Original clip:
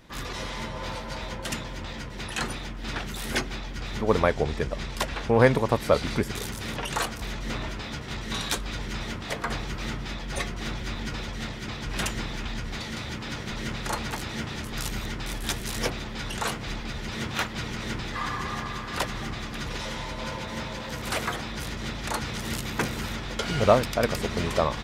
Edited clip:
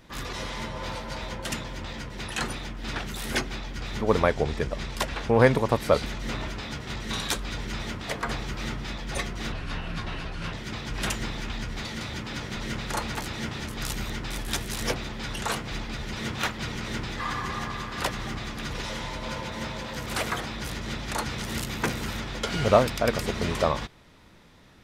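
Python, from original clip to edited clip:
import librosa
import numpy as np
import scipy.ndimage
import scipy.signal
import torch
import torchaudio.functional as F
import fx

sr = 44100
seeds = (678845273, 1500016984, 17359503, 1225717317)

y = fx.edit(x, sr, fx.cut(start_s=6.05, length_s=1.21),
    fx.speed_span(start_s=10.73, length_s=0.76, speed=0.75), tone=tone)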